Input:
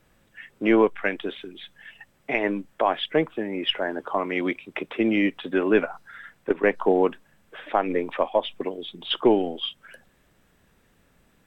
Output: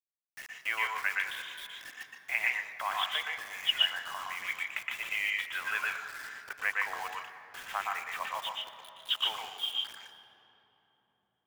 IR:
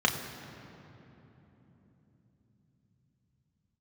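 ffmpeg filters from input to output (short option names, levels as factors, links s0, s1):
-filter_complex "[0:a]highpass=f=1100:w=0.5412,highpass=f=1100:w=1.3066,asettb=1/sr,asplit=3[s0][s1][s2];[s0]atrim=end=3.854[s3];[s1]atrim=start=3.85:end=4.4,asetpts=PTS-STARTPTS,afade=t=in:d=0.004:c=qsin,afade=t=out:st=0.546:d=0.004:c=qsin,acompressor=threshold=0.0224:ratio=6[s4];[s2]atrim=start=4.396[s5];[s3][s4]acrossfade=d=0.004:c1=hsin:c2=qsin[s6];[s6][s5]acrossfade=d=0.004:c1=qsin:c2=hsin,asettb=1/sr,asplit=3[s7][s8][s9];[s7]atrim=end=8.494[s10];[s8]atrim=start=8.49:end=9.09,asetpts=PTS-STARTPTS,afade=t=in:d=0.004:c=qsin,afade=t=out:st=0.596:d=0.004:c=qsin,equalizer=f=2900:w=0.64:g=-11.5[s11];[s9]atrim=start=9.086[s12];[s10][s11]acrossfade=d=0.004:c1=hsin:c2=qsin[s13];[s13][s12]acrossfade=d=0.004:c1=qsin:c2=hsin,acrusher=bits=6:mix=0:aa=0.000001,asplit=2[s14][s15];[1:a]atrim=start_sample=2205,lowshelf=f=260:g=-9.5,adelay=117[s16];[s15][s16]afir=irnorm=-1:irlink=0,volume=0.266[s17];[s14][s17]amix=inputs=2:normalize=0,volume=0.631"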